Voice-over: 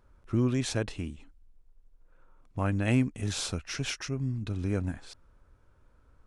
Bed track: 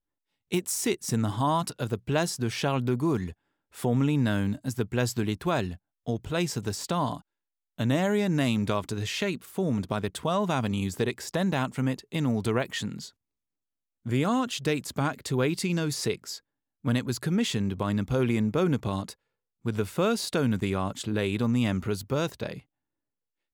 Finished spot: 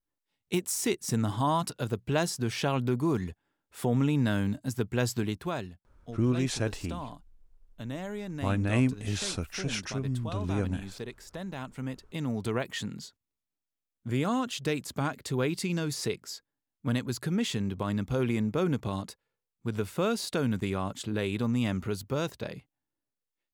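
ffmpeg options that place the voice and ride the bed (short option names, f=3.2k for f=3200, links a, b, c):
-filter_complex "[0:a]adelay=5850,volume=0dB[a];[1:a]volume=7.5dB,afade=t=out:st=5.16:d=0.58:silence=0.298538,afade=t=in:st=11.52:d=1.24:silence=0.354813[b];[a][b]amix=inputs=2:normalize=0"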